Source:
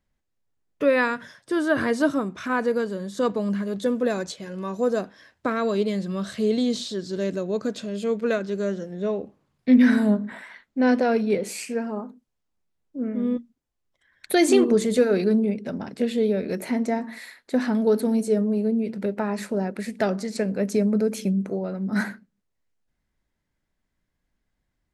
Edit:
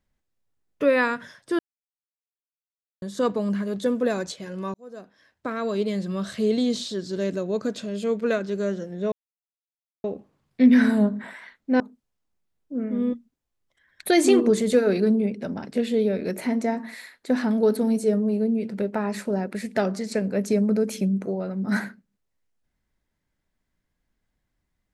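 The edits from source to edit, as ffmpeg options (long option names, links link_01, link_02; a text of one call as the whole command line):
ffmpeg -i in.wav -filter_complex "[0:a]asplit=6[link_01][link_02][link_03][link_04][link_05][link_06];[link_01]atrim=end=1.59,asetpts=PTS-STARTPTS,afade=type=out:start_time=1.586:duration=0.004:curve=hsin[link_07];[link_02]atrim=start=1.59:end=3.02,asetpts=PTS-STARTPTS,volume=0[link_08];[link_03]atrim=start=3.02:end=4.74,asetpts=PTS-STARTPTS,afade=type=in:duration=0.004:curve=hsin,afade=type=out:start_time=1.716:duration=0.004:curve=hsin[link_09];[link_04]atrim=start=4.74:end=9.12,asetpts=PTS-STARTPTS,afade=type=in:duration=1.31,afade=type=out:start_time=4.376:duration=0.004:curve=hsin,apad=pad_dur=0.92[link_10];[link_05]atrim=start=9.12:end=10.882,asetpts=PTS-STARTPTS,afade=type=in:duration=0.004:curve=hsin[link_11];[link_06]atrim=start=12.038[link_12];[link_07][link_08][link_09][link_10][link_11]concat=n=5:v=0:a=1[link_13];[link_13][link_12]acrossfade=duration=0.004:curve1=hsin:curve2=hsin" out.wav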